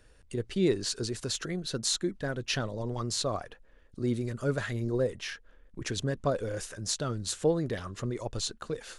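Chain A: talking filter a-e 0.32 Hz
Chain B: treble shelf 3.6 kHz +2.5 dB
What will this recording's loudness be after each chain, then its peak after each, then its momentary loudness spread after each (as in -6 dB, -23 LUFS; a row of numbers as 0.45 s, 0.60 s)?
-43.5 LUFS, -31.5 LUFS; -24.0 dBFS, -9.0 dBFS; 16 LU, 10 LU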